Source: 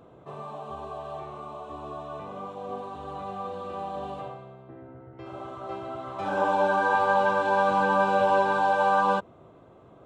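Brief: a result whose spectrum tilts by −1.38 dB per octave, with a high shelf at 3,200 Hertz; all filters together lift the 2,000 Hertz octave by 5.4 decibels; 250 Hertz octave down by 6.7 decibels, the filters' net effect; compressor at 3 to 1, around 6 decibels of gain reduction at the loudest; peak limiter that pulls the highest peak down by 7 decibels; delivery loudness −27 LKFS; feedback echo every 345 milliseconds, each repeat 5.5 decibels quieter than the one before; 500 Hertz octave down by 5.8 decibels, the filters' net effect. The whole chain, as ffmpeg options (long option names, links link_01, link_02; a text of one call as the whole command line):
ffmpeg -i in.wav -af "equalizer=frequency=250:width_type=o:gain=-8.5,equalizer=frequency=500:width_type=o:gain=-6,equalizer=frequency=2000:width_type=o:gain=7,highshelf=frequency=3200:gain=6,acompressor=threshold=-27dB:ratio=3,alimiter=limit=-23.5dB:level=0:latency=1,aecho=1:1:345|690|1035|1380|1725|2070|2415:0.531|0.281|0.149|0.079|0.0419|0.0222|0.0118,volume=6.5dB" out.wav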